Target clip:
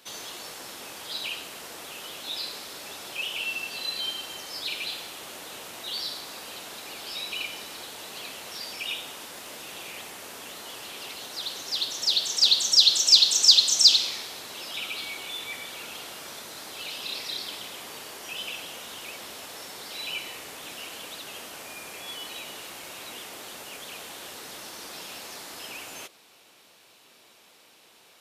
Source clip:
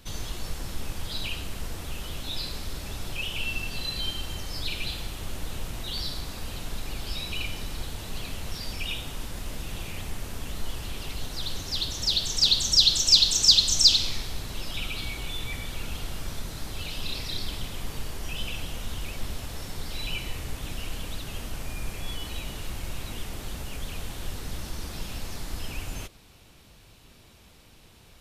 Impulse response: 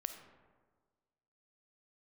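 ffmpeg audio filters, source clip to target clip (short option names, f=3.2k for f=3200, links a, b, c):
-af "highpass=420,volume=1.5dB"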